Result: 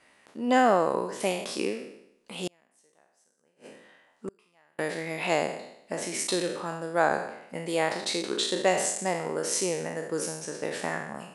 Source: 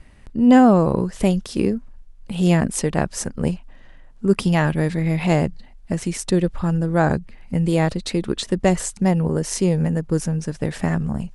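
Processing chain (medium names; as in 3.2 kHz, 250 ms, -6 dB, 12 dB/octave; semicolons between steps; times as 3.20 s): spectral sustain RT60 0.77 s; high-pass 470 Hz 12 dB/octave; 2.47–4.79 s: inverted gate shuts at -19 dBFS, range -38 dB; trim -4 dB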